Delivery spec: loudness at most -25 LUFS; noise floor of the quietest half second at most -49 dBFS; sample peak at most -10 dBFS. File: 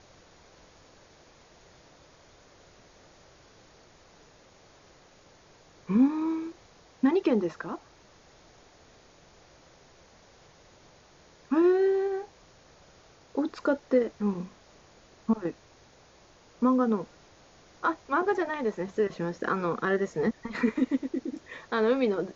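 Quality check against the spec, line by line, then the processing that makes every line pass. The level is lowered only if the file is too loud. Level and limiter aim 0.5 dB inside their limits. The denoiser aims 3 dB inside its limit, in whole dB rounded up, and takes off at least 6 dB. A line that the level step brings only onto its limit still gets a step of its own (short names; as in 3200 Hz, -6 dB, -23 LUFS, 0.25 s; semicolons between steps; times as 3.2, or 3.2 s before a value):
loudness -28.5 LUFS: OK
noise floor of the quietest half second -57 dBFS: OK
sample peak -12.5 dBFS: OK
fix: none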